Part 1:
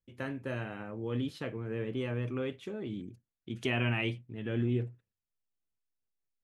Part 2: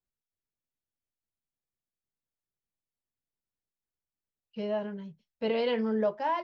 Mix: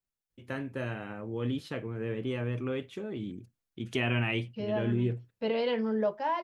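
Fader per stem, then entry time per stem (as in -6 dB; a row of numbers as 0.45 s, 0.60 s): +1.5 dB, -1.0 dB; 0.30 s, 0.00 s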